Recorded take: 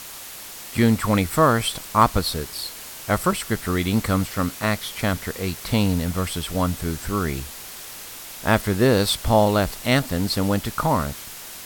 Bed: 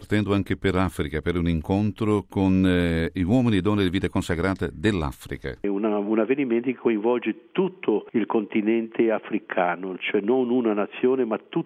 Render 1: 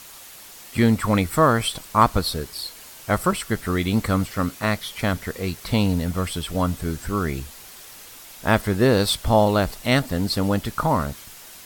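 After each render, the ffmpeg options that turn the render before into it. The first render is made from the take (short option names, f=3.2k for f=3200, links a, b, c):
-af "afftdn=nr=6:nf=-38"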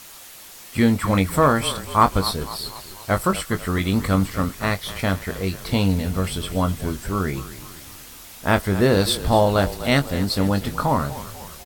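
-filter_complex "[0:a]asplit=2[a][b];[b]adelay=21,volume=-9dB[c];[a][c]amix=inputs=2:normalize=0,asplit=6[d][e][f][g][h][i];[e]adelay=247,afreqshift=-33,volume=-14.5dB[j];[f]adelay=494,afreqshift=-66,volume=-19.9dB[k];[g]adelay=741,afreqshift=-99,volume=-25.2dB[l];[h]adelay=988,afreqshift=-132,volume=-30.6dB[m];[i]adelay=1235,afreqshift=-165,volume=-35.9dB[n];[d][j][k][l][m][n]amix=inputs=6:normalize=0"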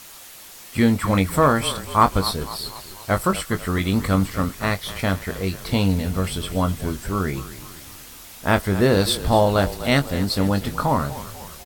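-af anull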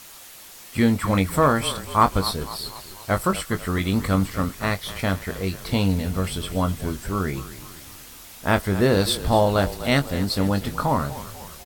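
-af "volume=-1.5dB"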